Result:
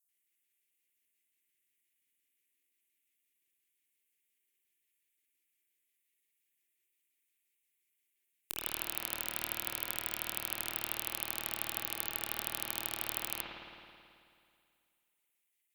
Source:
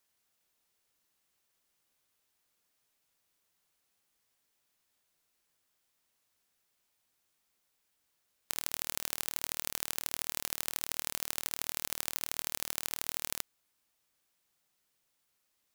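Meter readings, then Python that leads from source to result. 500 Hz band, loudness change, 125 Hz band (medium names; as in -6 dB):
+1.0 dB, -1.5 dB, +0.5 dB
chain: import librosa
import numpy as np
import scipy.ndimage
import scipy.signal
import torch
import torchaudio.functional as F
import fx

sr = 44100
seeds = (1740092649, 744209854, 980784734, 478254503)

y = fx.peak_eq(x, sr, hz=4800.0, db=-12.0, octaves=1.1)
y = fx.vibrato(y, sr, rate_hz=4.8, depth_cents=51.0)
y = fx.filter_lfo_highpass(y, sr, shape='square', hz=5.7, low_hz=590.0, high_hz=7600.0, q=0.96)
y = scipy.signal.sosfilt(scipy.signal.cheby1(3, 1.0, [360.0, 2100.0], 'bandstop', fs=sr, output='sos'), y)
y = fx.cheby_harmonics(y, sr, harmonics=(6, 8), levels_db=(-12, -22), full_scale_db=-8.0)
y = fx.rev_spring(y, sr, rt60_s=2.3, pass_ms=(54,), chirp_ms=70, drr_db=-4.0)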